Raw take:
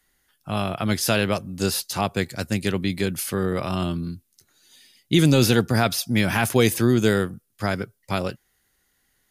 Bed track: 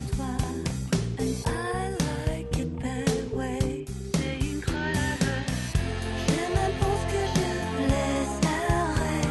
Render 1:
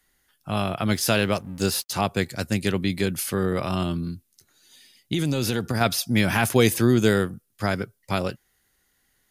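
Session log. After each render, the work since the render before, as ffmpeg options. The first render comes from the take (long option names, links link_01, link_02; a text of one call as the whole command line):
ffmpeg -i in.wav -filter_complex "[0:a]asettb=1/sr,asplit=3[link_01][link_02][link_03];[link_01]atrim=end=0.924[link_04];[link_02]atrim=start=0.92:end=1.91,asetpts=PTS-STARTPTS,afade=type=in:duration=0.004:curve=qsin,afade=type=out:start_time=0.986:duration=0.004:curve=qsin,aeval=exprs='sgn(val(0))*max(abs(val(0))-0.00447,0)':channel_layout=same[link_05];[link_03]atrim=start=1.906[link_06];[link_04][link_05]acrossfade=duration=0.004:curve1=hsin:curve2=qsin[link_07];[link_07][link_06]acrossfade=duration=0.004:curve1=qsin:curve2=hsin,asettb=1/sr,asplit=3[link_08][link_09][link_10];[link_08]atrim=end=3.824[link_11];[link_09]atrim=start=3.82:end=5.81,asetpts=PTS-STARTPTS,afade=type=in:duration=0.004:curve=qsin,afade=type=out:start_time=1.986:duration=0.004:curve=qsin,acompressor=threshold=-20dB:ratio=6:attack=3.2:release=140:knee=1:detection=peak[link_12];[link_10]atrim=start=5.806[link_13];[link_11][link_12]acrossfade=duration=0.004:curve1=hsin:curve2=qsin[link_14];[link_14][link_13]acrossfade=duration=0.004:curve1=qsin:curve2=hsin" out.wav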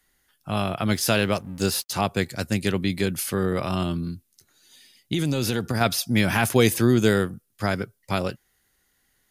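ffmpeg -i in.wav -af anull out.wav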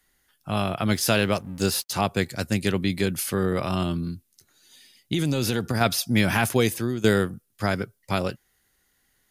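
ffmpeg -i in.wav -filter_complex "[0:a]asplit=2[link_01][link_02];[link_01]atrim=end=7.04,asetpts=PTS-STARTPTS,afade=type=out:start_time=6.34:duration=0.7:silence=0.211349[link_03];[link_02]atrim=start=7.04,asetpts=PTS-STARTPTS,afade=type=in:duration=0.004:curve=hsin:silence=0.211349[link_04];[link_03][link_04]concat=n=2:v=0:a=1" out.wav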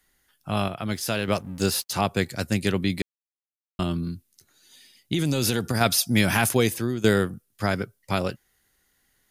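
ffmpeg -i in.wav -filter_complex "[0:a]asettb=1/sr,asplit=3[link_01][link_02][link_03];[link_01]atrim=end=5.264[link_04];[link_02]atrim=start=5.26:end=6.55,asetpts=PTS-STARTPTS,afade=type=in:duration=0.004:curve=qsin,afade=type=out:start_time=1.286:duration=0.004:curve=qsin,equalizer=frequency=9800:width_type=o:width=1.9:gain=5.5[link_05];[link_03]atrim=start=6.546[link_06];[link_04][link_05]acrossfade=duration=0.004:curve1=hsin:curve2=qsin[link_07];[link_07][link_06]acrossfade=duration=0.004:curve1=qsin:curve2=hsin,asplit=5[link_08][link_09][link_10][link_11][link_12];[link_08]atrim=end=0.682[link_13];[link_09]atrim=start=0.678:end=1.282,asetpts=PTS-STARTPTS,volume=-5.5dB[link_14];[link_10]atrim=start=1.278:end=3.02,asetpts=PTS-STARTPTS,afade=type=out:start_time=1.738:duration=0.004:curve=hsin[link_15];[link_11]atrim=start=3.02:end=3.79,asetpts=PTS-STARTPTS,volume=0[link_16];[link_12]atrim=start=3.79,asetpts=PTS-STARTPTS,afade=type=in:duration=0.004:curve=hsin[link_17];[link_13][link_14]acrossfade=duration=0.004:curve1=hsin:curve2=hsin[link_18];[link_15][link_16][link_17]concat=n=3:v=0:a=1[link_19];[link_18][link_19]acrossfade=duration=0.004:curve1=hsin:curve2=hsin" out.wav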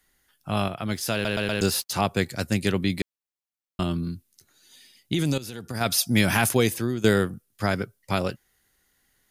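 ffmpeg -i in.wav -filter_complex "[0:a]asplit=6[link_01][link_02][link_03][link_04][link_05][link_06];[link_01]atrim=end=1.252[link_07];[link_02]atrim=start=1.128:end=1.252[link_08];[link_03]atrim=start=1.128:end=1.252[link_09];[link_04]atrim=start=1.128:end=1.252[link_10];[link_05]atrim=start=1.608:end=5.38,asetpts=PTS-STARTPTS,afade=type=out:start_time=3.768:duration=0.004:curve=hsin:silence=0.177828[link_11];[link_06]atrim=start=5.38,asetpts=PTS-STARTPTS,afade=type=in:duration=0.63:curve=qua:silence=0.177828[link_12];[link_07][link_08]acrossfade=duration=0.004:curve1=hsin:curve2=hsin[link_13];[link_13][link_09]acrossfade=duration=0.004:curve1=hsin:curve2=hsin[link_14];[link_14][link_10]acrossfade=duration=0.004:curve1=hsin:curve2=hsin[link_15];[link_11][link_12]concat=n=2:v=0:a=1[link_16];[link_15][link_16]acrossfade=duration=0.004:curve1=hsin:curve2=hsin" out.wav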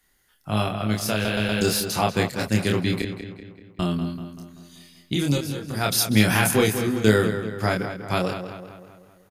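ffmpeg -i in.wav -filter_complex "[0:a]asplit=2[link_01][link_02];[link_02]adelay=28,volume=-3dB[link_03];[link_01][link_03]amix=inputs=2:normalize=0,asplit=2[link_04][link_05];[link_05]adelay=192,lowpass=frequency=3900:poles=1,volume=-9dB,asplit=2[link_06][link_07];[link_07]adelay=192,lowpass=frequency=3900:poles=1,volume=0.53,asplit=2[link_08][link_09];[link_09]adelay=192,lowpass=frequency=3900:poles=1,volume=0.53,asplit=2[link_10][link_11];[link_11]adelay=192,lowpass=frequency=3900:poles=1,volume=0.53,asplit=2[link_12][link_13];[link_13]adelay=192,lowpass=frequency=3900:poles=1,volume=0.53,asplit=2[link_14][link_15];[link_15]adelay=192,lowpass=frequency=3900:poles=1,volume=0.53[link_16];[link_04][link_06][link_08][link_10][link_12][link_14][link_16]amix=inputs=7:normalize=0" out.wav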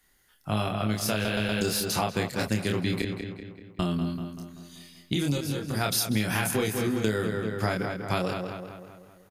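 ffmpeg -i in.wav -af "acompressor=threshold=-23dB:ratio=6" out.wav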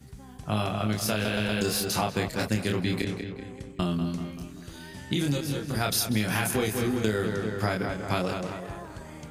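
ffmpeg -i in.wav -i bed.wav -filter_complex "[1:a]volume=-16.5dB[link_01];[0:a][link_01]amix=inputs=2:normalize=0" out.wav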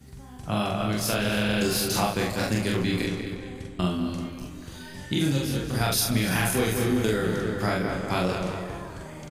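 ffmpeg -i in.wav -filter_complex "[0:a]asplit=2[link_01][link_02];[link_02]adelay=44,volume=-2dB[link_03];[link_01][link_03]amix=inputs=2:normalize=0,asplit=5[link_04][link_05][link_06][link_07][link_08];[link_05]adelay=289,afreqshift=-85,volume=-14.5dB[link_09];[link_06]adelay=578,afreqshift=-170,volume=-22.2dB[link_10];[link_07]adelay=867,afreqshift=-255,volume=-30dB[link_11];[link_08]adelay=1156,afreqshift=-340,volume=-37.7dB[link_12];[link_04][link_09][link_10][link_11][link_12]amix=inputs=5:normalize=0" out.wav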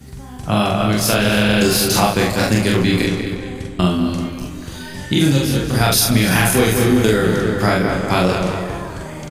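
ffmpeg -i in.wav -af "volume=10dB,alimiter=limit=-2dB:level=0:latency=1" out.wav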